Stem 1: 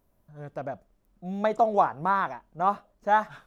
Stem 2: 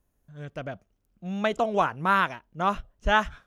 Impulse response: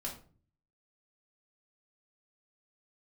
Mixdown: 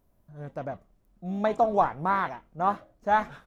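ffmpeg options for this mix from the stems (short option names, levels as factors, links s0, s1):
-filter_complex "[0:a]lowshelf=f=330:g=4,volume=0.841[s0];[1:a]aeval=exprs='val(0)*sin(2*PI*540*n/s+540*0.3/1*sin(2*PI*1*n/s))':c=same,adelay=28,volume=0.112,asplit=2[s1][s2];[s2]volume=0.596[s3];[2:a]atrim=start_sample=2205[s4];[s3][s4]afir=irnorm=-1:irlink=0[s5];[s0][s1][s5]amix=inputs=3:normalize=0"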